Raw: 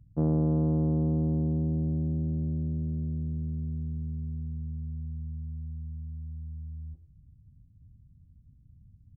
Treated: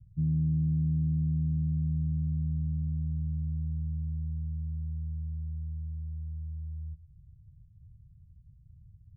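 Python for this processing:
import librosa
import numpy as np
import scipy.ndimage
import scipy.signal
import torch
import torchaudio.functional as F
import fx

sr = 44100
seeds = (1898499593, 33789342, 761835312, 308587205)

y = scipy.signal.sosfilt(scipy.signal.cheby2(4, 70, 730.0, 'lowpass', fs=sr, output='sos'), x)
y = y * librosa.db_to_amplitude(1.5)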